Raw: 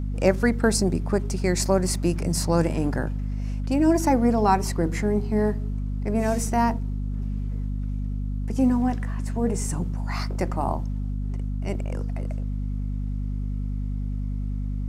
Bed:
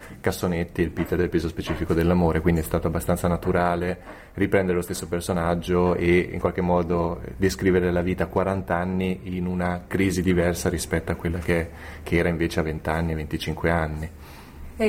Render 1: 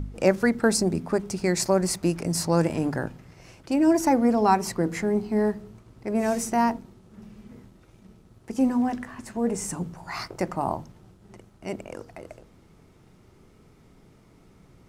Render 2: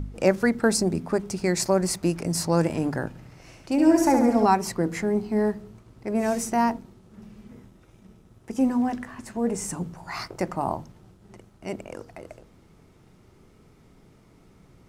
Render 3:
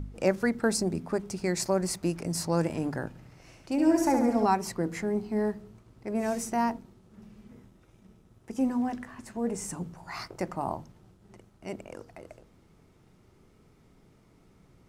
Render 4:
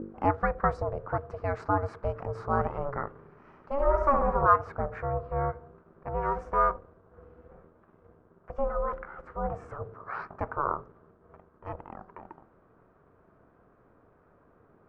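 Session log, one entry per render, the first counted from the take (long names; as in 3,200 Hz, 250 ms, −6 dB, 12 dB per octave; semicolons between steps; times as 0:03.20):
hum removal 50 Hz, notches 5
0:03.08–0:04.46: flutter between parallel walls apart 12 metres, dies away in 0.73 s; 0:07.50–0:08.69: notch filter 4,400 Hz
level −5 dB
ring modulation 280 Hz; low-pass with resonance 1,300 Hz, resonance Q 3.8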